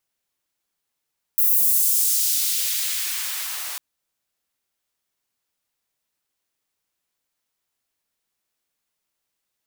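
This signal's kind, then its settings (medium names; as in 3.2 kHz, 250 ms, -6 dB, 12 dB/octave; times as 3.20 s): swept filtered noise white, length 2.40 s highpass, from 15 kHz, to 780 Hz, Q 0.87, exponential, gain ramp -17.5 dB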